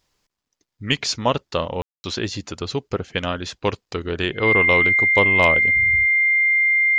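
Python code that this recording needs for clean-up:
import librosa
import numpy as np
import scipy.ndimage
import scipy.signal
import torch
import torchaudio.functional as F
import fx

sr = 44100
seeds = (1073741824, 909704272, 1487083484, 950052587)

y = fx.fix_declip(x, sr, threshold_db=-3.5)
y = fx.notch(y, sr, hz=2100.0, q=30.0)
y = fx.fix_ambience(y, sr, seeds[0], print_start_s=0.27, print_end_s=0.77, start_s=1.82, end_s=2.04)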